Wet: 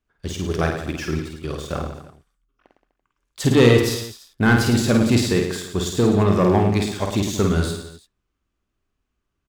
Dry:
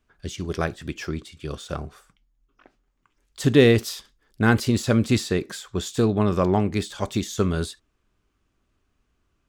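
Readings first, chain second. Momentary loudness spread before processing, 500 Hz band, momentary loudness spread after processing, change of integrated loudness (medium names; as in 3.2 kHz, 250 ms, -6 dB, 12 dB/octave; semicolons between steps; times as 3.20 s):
16 LU, +3.0 dB, 14 LU, +3.5 dB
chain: waveshaping leveller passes 2; on a send: reverse bouncing-ball echo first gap 50 ms, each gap 1.15×, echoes 5; on the sum: trim -4.5 dB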